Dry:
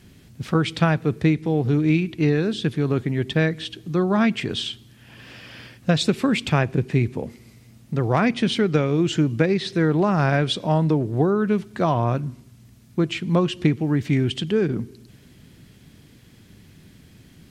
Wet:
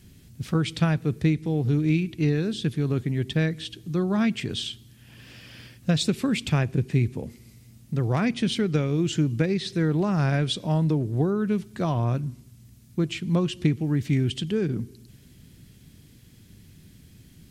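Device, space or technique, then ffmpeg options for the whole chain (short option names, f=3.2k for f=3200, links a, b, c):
smiley-face EQ: -af "lowshelf=f=160:g=6,equalizer=f=910:t=o:w=2.3:g=-4.5,highshelf=f=5.8k:g=7.5,volume=-4.5dB"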